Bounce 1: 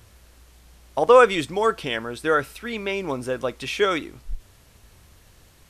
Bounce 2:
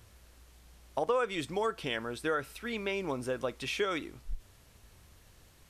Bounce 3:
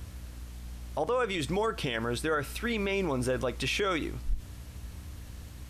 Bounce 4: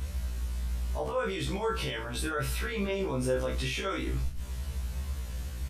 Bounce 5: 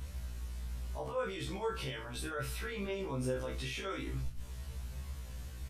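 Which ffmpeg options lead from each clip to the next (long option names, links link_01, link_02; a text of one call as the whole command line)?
ffmpeg -i in.wav -af "acompressor=threshold=-22dB:ratio=4,volume=-6dB" out.wav
ffmpeg -i in.wav -af "equalizer=frequency=73:width_type=o:width=1:gain=11,alimiter=level_in=4.5dB:limit=-24dB:level=0:latency=1:release=49,volume=-4.5dB,aeval=exprs='val(0)+0.00178*(sin(2*PI*60*n/s)+sin(2*PI*2*60*n/s)/2+sin(2*PI*3*60*n/s)/3+sin(2*PI*4*60*n/s)/4+sin(2*PI*5*60*n/s)/5)':channel_layout=same,volume=8dB" out.wav
ffmpeg -i in.wav -filter_complex "[0:a]alimiter=level_in=5.5dB:limit=-24dB:level=0:latency=1:release=17,volume=-5.5dB,asplit=2[link_01][link_02];[link_02]aecho=0:1:29|68:0.562|0.237[link_03];[link_01][link_03]amix=inputs=2:normalize=0,afftfilt=real='re*1.73*eq(mod(b,3),0)':imag='im*1.73*eq(mod(b,3),0)':win_size=2048:overlap=0.75,volume=6dB" out.wav
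ffmpeg -i in.wav -af "flanger=delay=7.2:depth=1.9:regen=69:speed=0.98:shape=sinusoidal,volume=-2.5dB" out.wav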